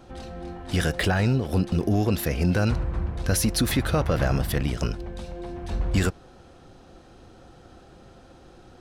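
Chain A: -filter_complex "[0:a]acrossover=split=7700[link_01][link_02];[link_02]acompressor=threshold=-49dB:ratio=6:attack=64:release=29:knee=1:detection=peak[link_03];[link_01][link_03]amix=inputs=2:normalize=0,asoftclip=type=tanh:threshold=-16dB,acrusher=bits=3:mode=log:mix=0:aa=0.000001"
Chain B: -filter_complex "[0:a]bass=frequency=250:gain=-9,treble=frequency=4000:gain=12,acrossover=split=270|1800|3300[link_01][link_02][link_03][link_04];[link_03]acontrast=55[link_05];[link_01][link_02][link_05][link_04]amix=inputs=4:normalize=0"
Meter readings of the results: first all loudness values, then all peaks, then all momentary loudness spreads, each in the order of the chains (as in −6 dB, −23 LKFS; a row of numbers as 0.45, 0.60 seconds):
−27.0, −22.5 LKFS; −16.0, −3.0 dBFS; 12, 21 LU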